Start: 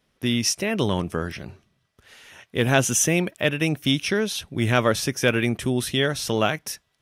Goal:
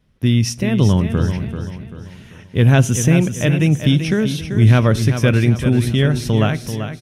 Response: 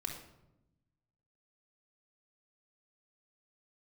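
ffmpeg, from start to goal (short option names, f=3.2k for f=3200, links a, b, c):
-filter_complex "[0:a]bass=f=250:g=15,treble=f=4k:g=-3,aecho=1:1:388|776|1164|1552|1940:0.355|0.145|0.0596|0.0245|0.01,asplit=2[a][b];[1:a]atrim=start_sample=2205,asetrate=57330,aresample=44100[c];[b][c]afir=irnorm=-1:irlink=0,volume=-13.5dB[d];[a][d]amix=inputs=2:normalize=0,volume=-1dB"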